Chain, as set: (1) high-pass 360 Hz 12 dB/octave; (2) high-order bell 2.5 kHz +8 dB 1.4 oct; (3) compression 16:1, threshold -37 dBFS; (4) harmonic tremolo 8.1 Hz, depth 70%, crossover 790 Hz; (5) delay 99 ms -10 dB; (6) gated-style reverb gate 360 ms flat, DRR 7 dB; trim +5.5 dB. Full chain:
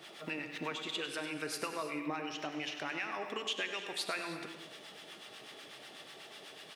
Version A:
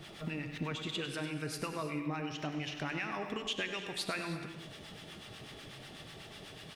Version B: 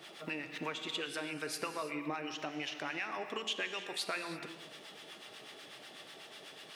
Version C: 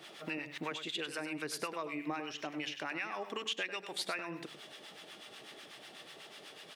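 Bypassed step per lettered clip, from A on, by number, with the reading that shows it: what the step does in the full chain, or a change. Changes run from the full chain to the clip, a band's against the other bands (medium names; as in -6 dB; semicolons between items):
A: 1, 125 Hz band +13.0 dB; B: 5, echo-to-direct -5.0 dB to -7.0 dB; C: 6, echo-to-direct -5.0 dB to -10.0 dB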